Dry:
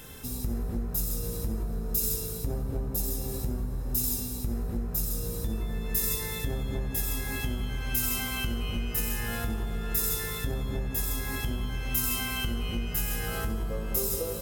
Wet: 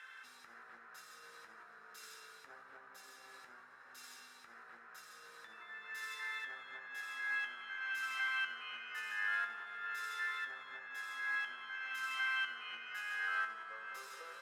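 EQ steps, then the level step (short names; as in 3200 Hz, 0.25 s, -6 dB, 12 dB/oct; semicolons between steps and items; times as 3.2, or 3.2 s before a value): ladder band-pass 1700 Hz, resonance 45%; bell 1700 Hz +5.5 dB 0.77 oct; +5.5 dB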